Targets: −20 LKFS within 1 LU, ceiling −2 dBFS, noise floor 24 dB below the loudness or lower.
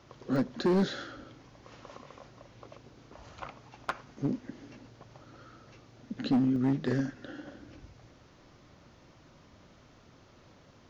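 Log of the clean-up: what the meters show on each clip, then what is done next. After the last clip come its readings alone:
share of clipped samples 1.1%; peaks flattened at −21.5 dBFS; number of dropouts 2; longest dropout 1.3 ms; integrated loudness −32.0 LKFS; sample peak −21.5 dBFS; target loudness −20.0 LKFS
→ clipped peaks rebuilt −21.5 dBFS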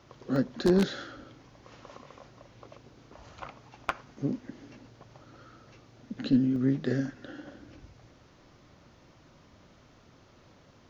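share of clipped samples 0.0%; number of dropouts 2; longest dropout 1.3 ms
→ repair the gap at 0:00.36/0:06.56, 1.3 ms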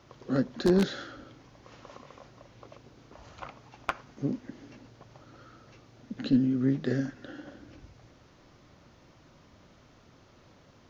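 number of dropouts 0; integrated loudness −29.5 LKFS; sample peak −12.5 dBFS; target loudness −20.0 LKFS
→ level +9.5 dB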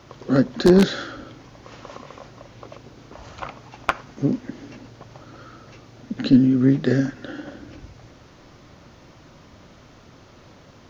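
integrated loudness −20.0 LKFS; sample peak −3.0 dBFS; background noise floor −49 dBFS

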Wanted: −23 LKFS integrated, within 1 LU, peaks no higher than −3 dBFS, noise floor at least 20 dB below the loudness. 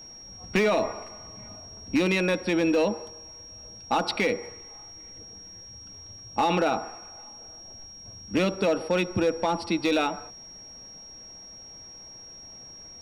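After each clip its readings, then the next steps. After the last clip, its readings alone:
share of clipped samples 0.5%; peaks flattened at −17.0 dBFS; interfering tone 5,600 Hz; level of the tone −43 dBFS; integrated loudness −26.0 LKFS; sample peak −17.0 dBFS; target loudness −23.0 LKFS
→ clipped peaks rebuilt −17 dBFS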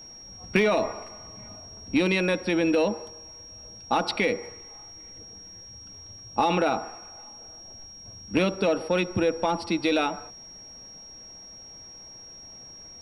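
share of clipped samples 0.0%; interfering tone 5,600 Hz; level of the tone −43 dBFS
→ notch filter 5,600 Hz, Q 30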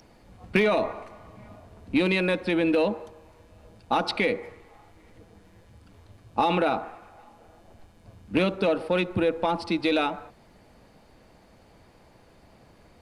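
interfering tone none found; integrated loudness −25.5 LKFS; sample peak −8.0 dBFS; target loudness −23.0 LKFS
→ level +2.5 dB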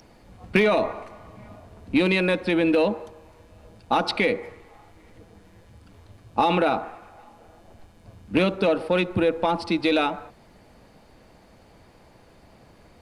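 integrated loudness −23.0 LKFS; sample peak −5.5 dBFS; background noise floor −54 dBFS

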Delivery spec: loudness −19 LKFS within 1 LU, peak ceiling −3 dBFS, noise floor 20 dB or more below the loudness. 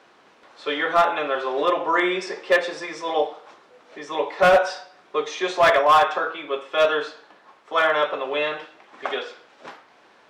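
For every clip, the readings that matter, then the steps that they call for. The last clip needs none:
share of clipped samples 1.1%; peaks flattened at −10.0 dBFS; integrated loudness −22.0 LKFS; sample peak −10.0 dBFS; target loudness −19.0 LKFS
→ clipped peaks rebuilt −10 dBFS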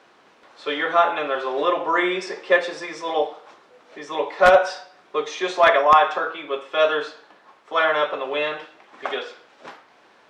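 share of clipped samples 0.0%; integrated loudness −21.0 LKFS; sample peak −1.0 dBFS; target loudness −19.0 LKFS
→ level +2 dB
brickwall limiter −3 dBFS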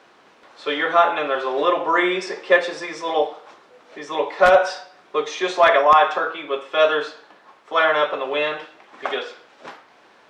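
integrated loudness −19.5 LKFS; sample peak −3.0 dBFS; background noise floor −53 dBFS

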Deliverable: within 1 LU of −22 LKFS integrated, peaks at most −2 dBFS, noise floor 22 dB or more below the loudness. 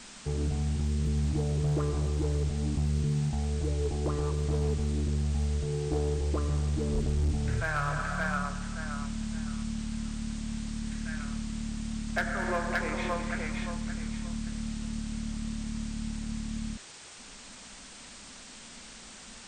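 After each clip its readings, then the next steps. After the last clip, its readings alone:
share of clipped samples 1.2%; peaks flattened at −22.5 dBFS; background noise floor −48 dBFS; target noise floor −54 dBFS; integrated loudness −32.0 LKFS; sample peak −22.5 dBFS; target loudness −22.0 LKFS
→ clipped peaks rebuilt −22.5 dBFS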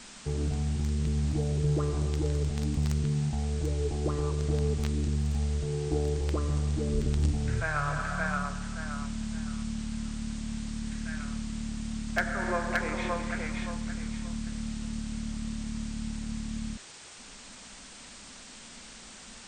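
share of clipped samples 0.0%; background noise floor −48 dBFS; target noise floor −54 dBFS
→ noise reduction from a noise print 6 dB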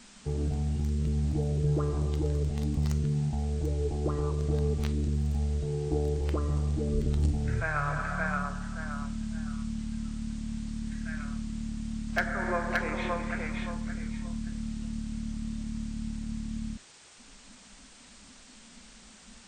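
background noise floor −53 dBFS; target noise floor −54 dBFS
→ noise reduction from a noise print 6 dB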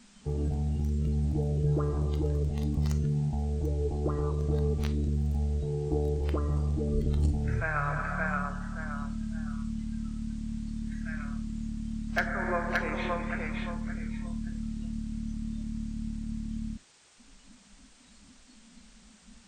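background noise floor −57 dBFS; integrated loudness −32.0 LKFS; sample peak −13.5 dBFS; target loudness −22.0 LKFS
→ level +10 dB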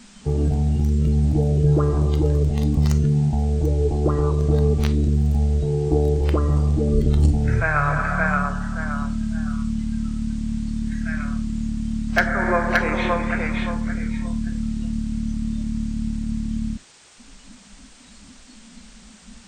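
integrated loudness −22.0 LKFS; sample peak −3.5 dBFS; background noise floor −47 dBFS

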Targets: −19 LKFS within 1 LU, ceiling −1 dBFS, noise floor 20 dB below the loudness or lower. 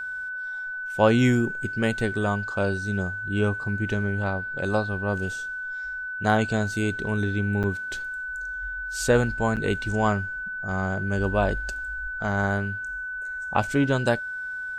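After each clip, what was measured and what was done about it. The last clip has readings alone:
number of dropouts 2; longest dropout 8.1 ms; interfering tone 1,500 Hz; level of the tone −30 dBFS; integrated loudness −26.0 LKFS; sample peak −5.5 dBFS; target loudness −19.0 LKFS
→ repair the gap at 0:07.63/0:09.56, 8.1 ms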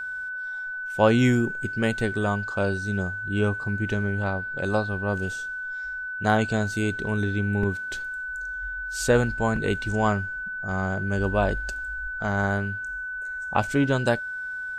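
number of dropouts 0; interfering tone 1,500 Hz; level of the tone −30 dBFS
→ notch filter 1,500 Hz, Q 30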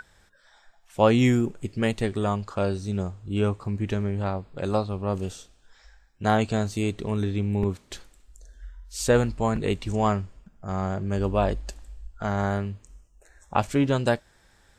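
interfering tone none found; integrated loudness −26.5 LKFS; sample peak −6.0 dBFS; target loudness −19.0 LKFS
→ level +7.5 dB
brickwall limiter −1 dBFS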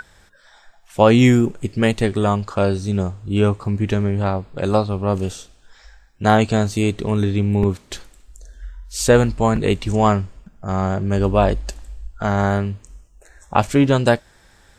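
integrated loudness −19.0 LKFS; sample peak −1.0 dBFS; background noise floor −53 dBFS

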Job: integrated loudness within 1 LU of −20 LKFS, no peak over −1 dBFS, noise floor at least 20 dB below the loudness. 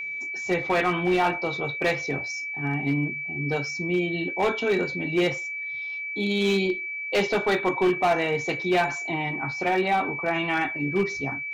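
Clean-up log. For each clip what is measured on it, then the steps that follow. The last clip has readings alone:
share of clipped samples 1.4%; peaks flattened at −16.5 dBFS; interfering tone 2,300 Hz; level of the tone −30 dBFS; integrated loudness −25.5 LKFS; sample peak −16.5 dBFS; target loudness −20.0 LKFS
→ clipped peaks rebuilt −16.5 dBFS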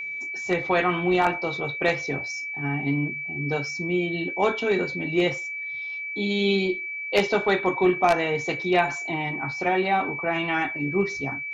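share of clipped samples 0.0%; interfering tone 2,300 Hz; level of the tone −30 dBFS
→ notch filter 2,300 Hz, Q 30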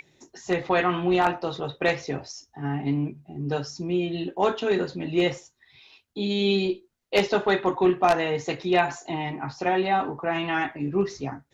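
interfering tone none found; integrated loudness −25.5 LKFS; sample peak −7.0 dBFS; target loudness −20.0 LKFS
→ level +5.5 dB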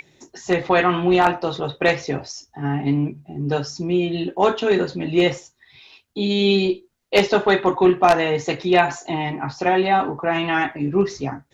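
integrated loudness −20.0 LKFS; sample peak −1.5 dBFS; background noise floor −63 dBFS

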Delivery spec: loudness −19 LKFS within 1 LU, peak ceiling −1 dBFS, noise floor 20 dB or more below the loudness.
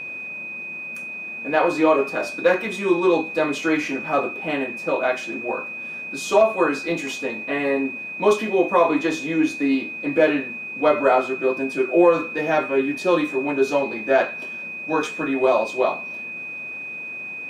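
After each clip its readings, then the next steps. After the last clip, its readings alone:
interfering tone 2,500 Hz; level of the tone −30 dBFS; integrated loudness −22.0 LKFS; sample peak −4.5 dBFS; target loudness −19.0 LKFS
→ notch filter 2,500 Hz, Q 30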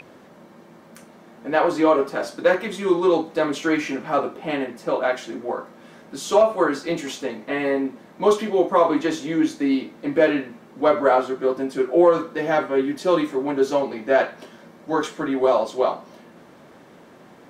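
interfering tone none found; integrated loudness −22.0 LKFS; sample peak −5.0 dBFS; target loudness −19.0 LKFS
→ level +3 dB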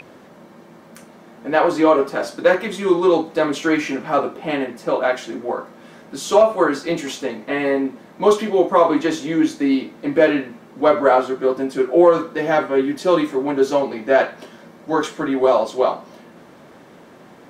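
integrated loudness −19.0 LKFS; sample peak −2.0 dBFS; background noise floor −45 dBFS

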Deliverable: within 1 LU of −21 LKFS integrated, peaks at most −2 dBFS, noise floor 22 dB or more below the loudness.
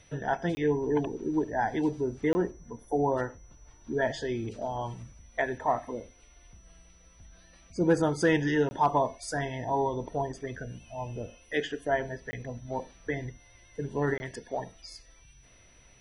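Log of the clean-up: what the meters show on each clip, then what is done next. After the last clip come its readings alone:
number of dropouts 5; longest dropout 20 ms; interfering tone 5,900 Hz; level of the tone −61 dBFS; integrated loudness −30.5 LKFS; sample peak −14.5 dBFS; target loudness −21.0 LKFS
→ repair the gap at 0:00.55/0:02.33/0:08.69/0:12.31/0:14.18, 20 ms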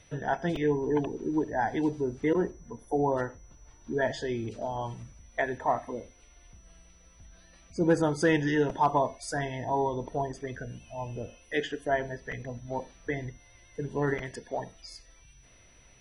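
number of dropouts 0; interfering tone 5,900 Hz; level of the tone −61 dBFS
→ notch filter 5,900 Hz, Q 30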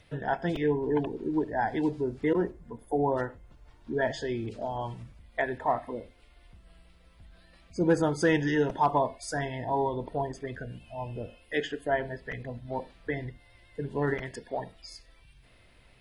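interfering tone none found; integrated loudness −30.5 LKFS; sample peak −14.5 dBFS; target loudness −21.0 LKFS
→ level +9.5 dB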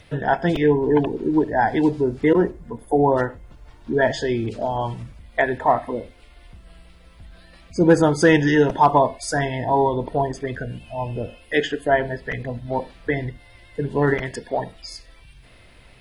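integrated loudness −21.0 LKFS; sample peak −5.0 dBFS; background noise floor −49 dBFS

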